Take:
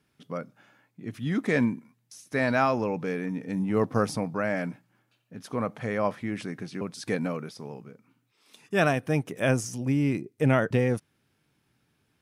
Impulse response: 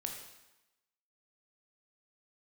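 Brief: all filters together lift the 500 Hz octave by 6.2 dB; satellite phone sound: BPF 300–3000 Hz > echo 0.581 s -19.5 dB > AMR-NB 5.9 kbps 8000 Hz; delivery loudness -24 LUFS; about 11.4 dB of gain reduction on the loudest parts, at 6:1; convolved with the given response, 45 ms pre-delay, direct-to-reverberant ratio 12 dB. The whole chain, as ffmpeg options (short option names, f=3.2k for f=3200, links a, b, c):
-filter_complex "[0:a]equalizer=f=500:t=o:g=8,acompressor=threshold=-27dB:ratio=6,asplit=2[a][b];[1:a]atrim=start_sample=2205,adelay=45[c];[b][c]afir=irnorm=-1:irlink=0,volume=-11.5dB[d];[a][d]amix=inputs=2:normalize=0,highpass=300,lowpass=3k,aecho=1:1:581:0.106,volume=11.5dB" -ar 8000 -c:a libopencore_amrnb -b:a 5900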